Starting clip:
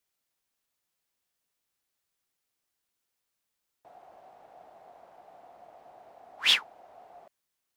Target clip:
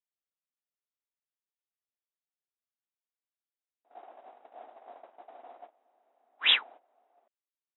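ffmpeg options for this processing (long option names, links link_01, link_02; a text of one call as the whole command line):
ffmpeg -i in.wav -filter_complex "[0:a]asettb=1/sr,asplit=3[link_01][link_02][link_03];[link_01]atrim=end=3.904[link_04];[link_02]atrim=start=3.9:end=5.66,asetpts=PTS-STARTPTS,afade=type=in:duration=0.004:curve=qsin,afade=type=out:start_time=1.756:duration=0.004:curve=qsin,acontrast=35[link_05];[link_03]atrim=start=5.656[link_06];[link_04][link_05]acrossfade=duration=0.004:curve1=hsin:curve2=qsin[link_07];[link_07][link_06]acrossfade=duration=0.004:curve1=qsin:curve2=hsin,afftfilt=real='re*between(b*sr/4096,220,3900)':imag='im*between(b*sr/4096,220,3900)':win_size=4096:overlap=0.75,agate=range=-18dB:threshold=-47dB:ratio=16:detection=peak" out.wav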